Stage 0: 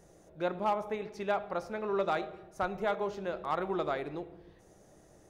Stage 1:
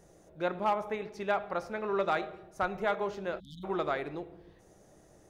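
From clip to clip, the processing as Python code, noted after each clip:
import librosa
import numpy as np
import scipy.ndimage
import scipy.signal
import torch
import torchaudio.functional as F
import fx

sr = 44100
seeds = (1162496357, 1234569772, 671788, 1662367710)

y = fx.spec_erase(x, sr, start_s=3.4, length_s=0.24, low_hz=280.0, high_hz=3000.0)
y = fx.dynamic_eq(y, sr, hz=1800.0, q=0.94, threshold_db=-45.0, ratio=4.0, max_db=4)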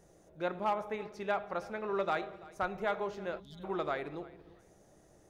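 y = fx.echo_feedback(x, sr, ms=335, feedback_pct=22, wet_db=-21.0)
y = y * librosa.db_to_amplitude(-3.0)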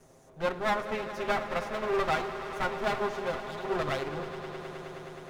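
y = fx.lower_of_two(x, sr, delay_ms=7.6)
y = fx.echo_swell(y, sr, ms=105, loudest=5, wet_db=-15.5)
y = y * librosa.db_to_amplitude(6.0)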